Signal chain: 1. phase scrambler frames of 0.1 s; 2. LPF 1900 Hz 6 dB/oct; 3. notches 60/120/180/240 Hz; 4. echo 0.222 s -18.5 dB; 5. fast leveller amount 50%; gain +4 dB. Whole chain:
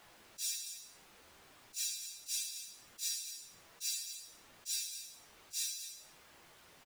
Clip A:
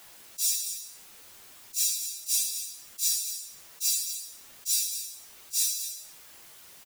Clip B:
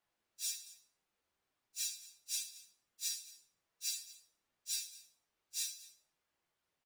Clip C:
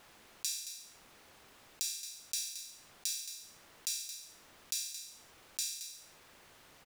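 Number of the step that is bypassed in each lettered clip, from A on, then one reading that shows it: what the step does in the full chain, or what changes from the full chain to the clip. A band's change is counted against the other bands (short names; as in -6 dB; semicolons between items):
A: 2, momentary loudness spread change -4 LU; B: 5, crest factor change +2.0 dB; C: 1, crest factor change +7.5 dB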